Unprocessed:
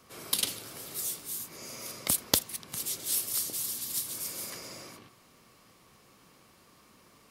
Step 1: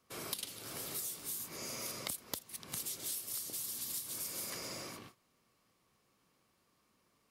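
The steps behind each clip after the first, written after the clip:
noise gate −55 dBFS, range −16 dB
downward compressor 12 to 1, threshold −38 dBFS, peak gain reduction 21 dB
level +1 dB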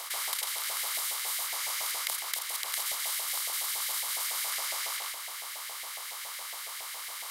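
compressor on every frequency bin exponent 0.2
auto-filter high-pass saw up 7.2 Hz 690–2,100 Hz
parametric band 220 Hz −12 dB 0.94 octaves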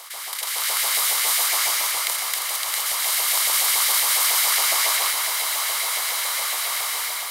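automatic gain control gain up to 13 dB
echo that builds up and dies away 113 ms, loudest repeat 8, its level −18 dB
convolution reverb RT60 0.40 s, pre-delay 117 ms, DRR 5 dB
level −1 dB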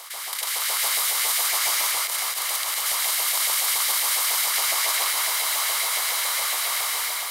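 brickwall limiter −13 dBFS, peak gain reduction 10.5 dB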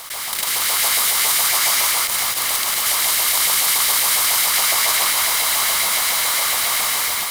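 one scale factor per block 3 bits
level +5.5 dB

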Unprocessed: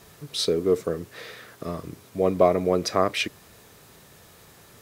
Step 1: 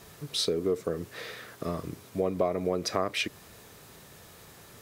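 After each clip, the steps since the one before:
downward compressor 3 to 1, threshold −26 dBFS, peak gain reduction 10 dB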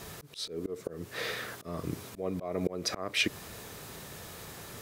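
volume swells 385 ms
level +6 dB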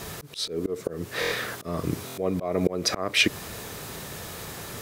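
buffer that repeats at 0:01.20/0:02.06, samples 1,024, times 4
level +7.5 dB

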